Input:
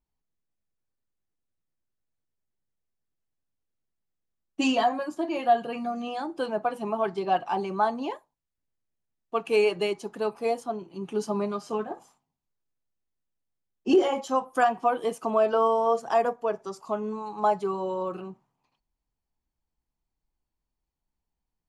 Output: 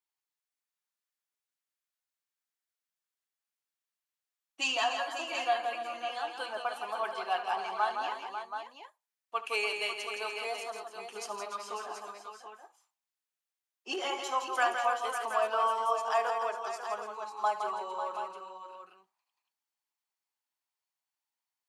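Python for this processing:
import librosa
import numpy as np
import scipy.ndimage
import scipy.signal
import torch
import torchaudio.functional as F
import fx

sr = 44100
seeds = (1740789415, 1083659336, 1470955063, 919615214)

p1 = scipy.signal.sosfilt(scipy.signal.butter(2, 1100.0, 'highpass', fs=sr, output='sos'), x)
y = p1 + fx.echo_multitap(p1, sr, ms=(72, 165, 292, 546, 728), db=(-14.5, -6.5, -11.0, -9.5, -9.0), dry=0)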